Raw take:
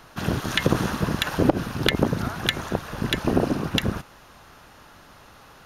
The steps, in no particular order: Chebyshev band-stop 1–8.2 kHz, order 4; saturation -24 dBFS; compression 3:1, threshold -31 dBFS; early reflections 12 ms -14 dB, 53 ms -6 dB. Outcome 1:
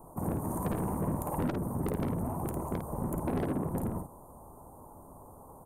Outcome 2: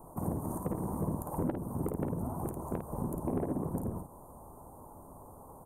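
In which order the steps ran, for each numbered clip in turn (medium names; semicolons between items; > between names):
Chebyshev band-stop > saturation > compression > early reflections; compression > Chebyshev band-stop > saturation > early reflections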